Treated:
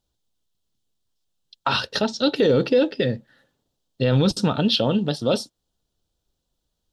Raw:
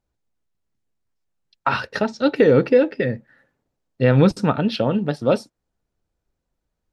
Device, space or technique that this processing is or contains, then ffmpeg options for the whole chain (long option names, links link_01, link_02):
over-bright horn tweeter: -af "highshelf=frequency=2700:width_type=q:width=3:gain=6.5,alimiter=limit=-10dB:level=0:latency=1:release=11"